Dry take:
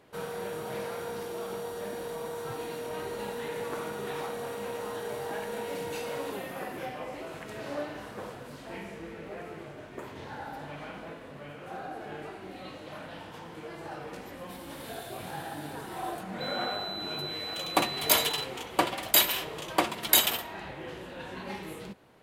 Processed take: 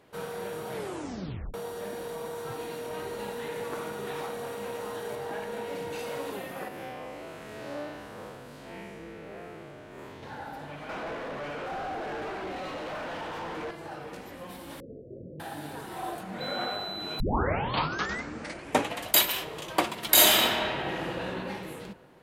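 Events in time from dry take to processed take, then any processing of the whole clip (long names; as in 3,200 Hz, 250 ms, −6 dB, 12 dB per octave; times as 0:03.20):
0:00.73: tape stop 0.81 s
0:05.15–0:05.99: high-shelf EQ 5,300 Hz −6 dB
0:06.68–0:10.23: spectrum smeared in time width 127 ms
0:10.89–0:13.71: mid-hump overdrive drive 29 dB, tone 1,300 Hz, clips at −27.5 dBFS
0:14.80–0:15.40: Butterworth low-pass 570 Hz 96 dB per octave
0:17.20: tape start 1.95 s
0:20.09–0:21.22: thrown reverb, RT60 2.1 s, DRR −7 dB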